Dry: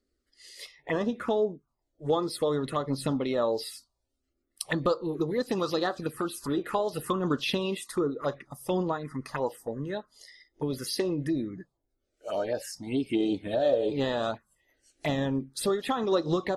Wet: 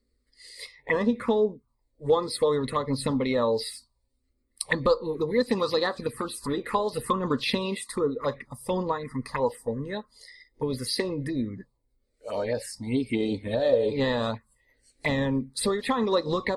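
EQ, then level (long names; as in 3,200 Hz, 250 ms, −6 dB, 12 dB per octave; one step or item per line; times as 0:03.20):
EQ curve with evenly spaced ripples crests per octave 0.95, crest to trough 10 dB
dynamic equaliser 2,100 Hz, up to +4 dB, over −41 dBFS, Q 0.79
low-shelf EQ 100 Hz +9.5 dB
0.0 dB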